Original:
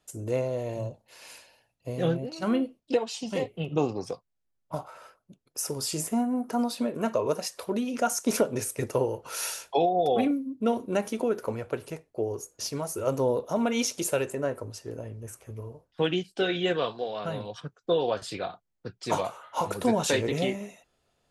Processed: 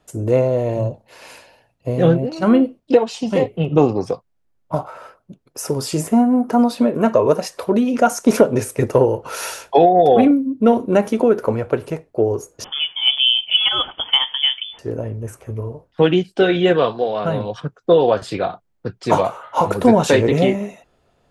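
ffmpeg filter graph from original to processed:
-filter_complex "[0:a]asettb=1/sr,asplit=3[a][b][c];[a]atrim=end=12.644[d];[b]atrim=start=12.64:end=14.79,asetpts=PTS-STARTPTS,afade=t=in:d=0.004:c=qsin,afade=t=out:st=2.146:d=0.004:c=qsin,equalizer=f=630:w=2.3:g=7,lowpass=f=3.1k:t=q:w=0.5098,lowpass=f=3.1k:t=q:w=0.6013,lowpass=f=3.1k:t=q:w=0.9,lowpass=f=3.1k:t=q:w=2.563,afreqshift=-3600[e];[c]atrim=start=14.786[f];[d][e]acrossfade=d=0.004:c1=hsin:c2=qsin[g];[g][f]acrossfade=d=0.004:c1=qsin:c2=hsin,highshelf=f=2.6k:g=-11.5,acontrast=78,volume=6dB"

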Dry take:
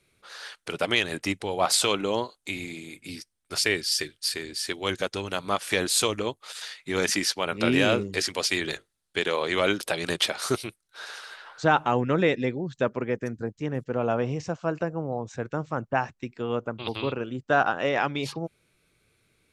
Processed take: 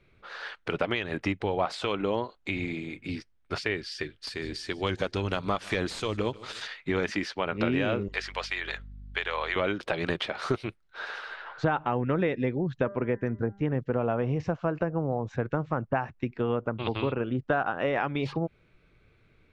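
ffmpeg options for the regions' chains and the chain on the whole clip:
-filter_complex "[0:a]asettb=1/sr,asplit=3[a][b][c];[a]atrim=end=4.274[d];[b]atrim=start=4.27:end=6.67,asetpts=PTS-STARTPTS,afade=t=in:d=0.004:c=qsin,afade=t=out:st=2.396:d=0.004:c=qsin,bass=f=250:g=3,treble=f=4k:g=10,volume=13.5dB,asoftclip=hard,volume=-13.5dB,aecho=1:1:151|302|453:0.0668|0.0301|0.0135,atrim=end_sample=105840[e];[c]atrim=start=6.666[f];[d][e]acrossfade=d=0.004:c1=hsin:c2=qsin[g];[g][f]acrossfade=d=0.004:c1=qsin:c2=hsin,asettb=1/sr,asplit=3[h][i][j];[h]atrim=end=8.084[k];[i]atrim=start=8.08:end=9.56,asetpts=PTS-STARTPTS,afade=t=in:d=0.004:c=qsin,afade=t=out:st=1.476:d=0.004:c=qsin,highpass=850,aeval=exprs='val(0)+0.00224*(sin(2*PI*50*n/s)+sin(2*PI*2*50*n/s)/2+sin(2*PI*3*50*n/s)/3+sin(2*PI*4*50*n/s)/4+sin(2*PI*5*50*n/s)/5)':c=same[l];[j]atrim=start=9.556[m];[k][l]acrossfade=d=0.004:c1=hsin:c2=qsin[n];[n][m]acrossfade=d=0.004:c1=qsin:c2=hsin,asettb=1/sr,asplit=3[o][p][q];[o]atrim=end=12.754[r];[p]atrim=start=12.75:end=13.72,asetpts=PTS-STARTPTS,afade=t=in:d=0.004:c=qsin,afade=t=out:st=0.966:d=0.004:c=qsin,lowpass=f=6.2k:w=0.5412,lowpass=f=6.2k:w=1.3066,equalizer=f=4.7k:t=o:w=0.51:g=-8,bandreject=f=198.7:t=h:w=4,bandreject=f=397.4:t=h:w=4,bandreject=f=596.1:t=h:w=4,bandreject=f=794.8:t=h:w=4,bandreject=f=993.5:t=h:w=4,bandreject=f=1.1922k:t=h:w=4,bandreject=f=1.3909k:t=h:w=4,bandreject=f=1.5896k:t=h:w=4,bandreject=f=1.7883k:t=h:w=4,bandreject=f=1.987k:t=h:w=4[s];[q]atrim=start=13.716[t];[r][s]acrossfade=d=0.004:c1=hsin:c2=qsin[u];[u][t]acrossfade=d=0.004:c1=qsin:c2=hsin,acompressor=threshold=-29dB:ratio=4,lowpass=2.5k,lowshelf=f=67:g=11.5,volume=4.5dB"

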